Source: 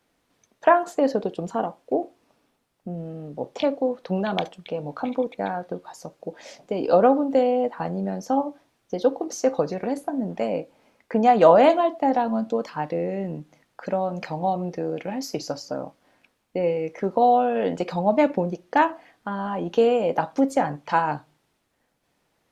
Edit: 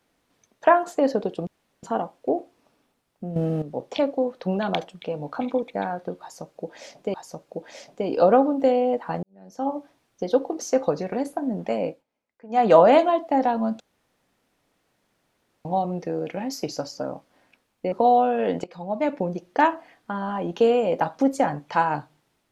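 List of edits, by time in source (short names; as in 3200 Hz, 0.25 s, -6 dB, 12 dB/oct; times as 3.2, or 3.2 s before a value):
1.47 insert room tone 0.36 s
3–3.26 gain +11 dB
5.85–6.78 loop, 2 plays
7.94–8.48 fade in quadratic
10.6–11.35 dip -22 dB, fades 0.15 s
12.51–14.36 room tone
16.63–17.09 cut
17.81–18.63 fade in, from -18.5 dB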